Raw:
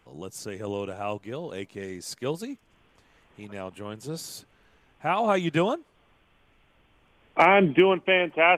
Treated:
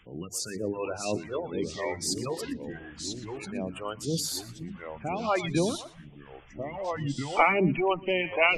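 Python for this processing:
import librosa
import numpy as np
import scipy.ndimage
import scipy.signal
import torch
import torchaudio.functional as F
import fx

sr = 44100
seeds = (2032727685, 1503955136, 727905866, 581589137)

p1 = fx.diode_clip(x, sr, knee_db=-12.5)
p2 = fx.hum_notches(p1, sr, base_hz=50, count=5)
p3 = fx.spec_gate(p2, sr, threshold_db=-20, keep='strong')
p4 = fx.peak_eq(p3, sr, hz=110.0, db=-7.0, octaves=0.38)
p5 = fx.over_compress(p4, sr, threshold_db=-29.0, ratio=-0.5)
p6 = p4 + (p5 * 10.0 ** (-3.0 / 20.0))
p7 = fx.echo_pitch(p6, sr, ms=589, semitones=-3, count=3, db_per_echo=-6.0)
p8 = p7 + fx.echo_feedback(p7, sr, ms=119, feedback_pct=15, wet_db=-17.5, dry=0)
y = fx.phaser_stages(p8, sr, stages=2, low_hz=170.0, high_hz=1400.0, hz=2.0, feedback_pct=25)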